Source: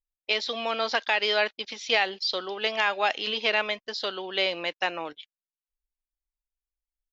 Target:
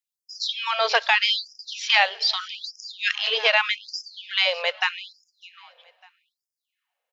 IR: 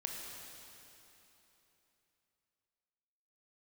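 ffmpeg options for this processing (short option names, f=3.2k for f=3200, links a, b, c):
-filter_complex "[0:a]aecho=1:1:602|1204:0.141|0.0283,asplit=2[a][b];[1:a]atrim=start_sample=2205[c];[b][c]afir=irnorm=-1:irlink=0,volume=-21dB[d];[a][d]amix=inputs=2:normalize=0,afftfilt=real='re*gte(b*sr/1024,390*pow(4900/390,0.5+0.5*sin(2*PI*0.81*pts/sr)))':imag='im*gte(b*sr/1024,390*pow(4900/390,0.5+0.5*sin(2*PI*0.81*pts/sr)))':win_size=1024:overlap=0.75,volume=5.5dB"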